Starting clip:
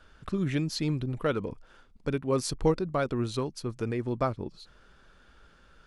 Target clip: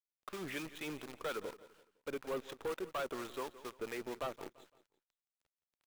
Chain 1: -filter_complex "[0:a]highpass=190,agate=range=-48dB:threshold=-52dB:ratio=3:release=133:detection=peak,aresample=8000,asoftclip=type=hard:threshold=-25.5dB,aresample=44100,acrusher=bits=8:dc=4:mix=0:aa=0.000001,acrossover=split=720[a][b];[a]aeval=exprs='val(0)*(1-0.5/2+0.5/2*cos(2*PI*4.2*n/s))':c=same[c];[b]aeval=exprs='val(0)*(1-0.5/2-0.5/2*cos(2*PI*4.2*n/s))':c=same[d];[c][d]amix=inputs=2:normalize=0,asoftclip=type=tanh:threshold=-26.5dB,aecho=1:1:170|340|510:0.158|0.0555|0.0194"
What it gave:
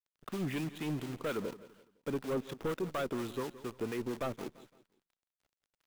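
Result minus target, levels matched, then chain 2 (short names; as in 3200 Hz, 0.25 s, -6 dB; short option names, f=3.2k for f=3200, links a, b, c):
soft clip: distortion -8 dB; 250 Hz band +4.5 dB
-filter_complex "[0:a]highpass=500,agate=range=-48dB:threshold=-52dB:ratio=3:release=133:detection=peak,aresample=8000,asoftclip=type=hard:threshold=-25.5dB,aresample=44100,acrusher=bits=8:dc=4:mix=0:aa=0.000001,acrossover=split=720[a][b];[a]aeval=exprs='val(0)*(1-0.5/2+0.5/2*cos(2*PI*4.2*n/s))':c=same[c];[b]aeval=exprs='val(0)*(1-0.5/2-0.5/2*cos(2*PI*4.2*n/s))':c=same[d];[c][d]amix=inputs=2:normalize=0,asoftclip=type=tanh:threshold=-32.5dB,aecho=1:1:170|340|510:0.158|0.0555|0.0194"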